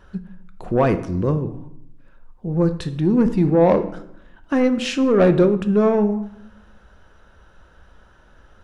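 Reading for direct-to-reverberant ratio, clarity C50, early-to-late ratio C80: 9.0 dB, 13.0 dB, 15.5 dB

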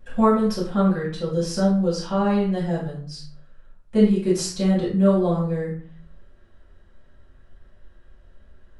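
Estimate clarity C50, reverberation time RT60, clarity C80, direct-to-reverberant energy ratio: 4.0 dB, 0.50 s, 8.5 dB, −8.0 dB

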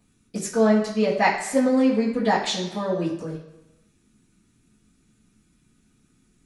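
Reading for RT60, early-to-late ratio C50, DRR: 1.0 s, 6.0 dB, −14.0 dB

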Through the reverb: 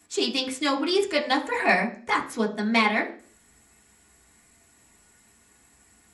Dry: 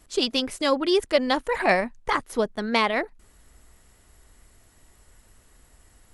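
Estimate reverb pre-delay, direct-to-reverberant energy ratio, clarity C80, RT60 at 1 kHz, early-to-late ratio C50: 3 ms, −2.0 dB, 17.5 dB, 0.40 s, 13.0 dB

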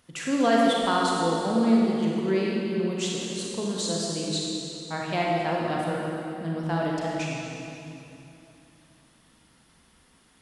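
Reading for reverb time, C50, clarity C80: 2.9 s, −2.5 dB, −0.5 dB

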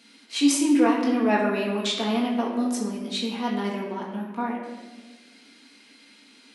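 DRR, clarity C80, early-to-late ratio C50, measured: −3.5 dB, 5.0 dB, 3.0 dB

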